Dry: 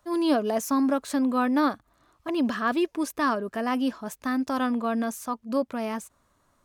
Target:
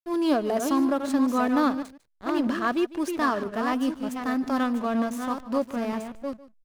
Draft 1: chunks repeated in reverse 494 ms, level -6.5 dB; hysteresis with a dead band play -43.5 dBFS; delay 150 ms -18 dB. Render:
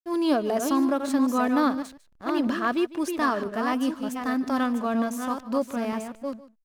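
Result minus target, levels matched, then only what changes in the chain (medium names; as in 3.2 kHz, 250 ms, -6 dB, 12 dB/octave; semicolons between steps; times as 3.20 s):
hysteresis with a dead band: distortion -8 dB
change: hysteresis with a dead band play -35 dBFS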